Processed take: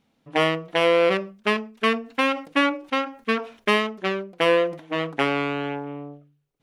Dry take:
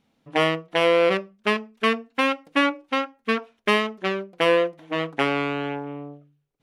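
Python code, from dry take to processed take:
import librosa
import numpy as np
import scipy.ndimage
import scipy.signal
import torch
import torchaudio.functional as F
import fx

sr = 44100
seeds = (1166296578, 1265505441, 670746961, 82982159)

y = fx.sustainer(x, sr, db_per_s=140.0)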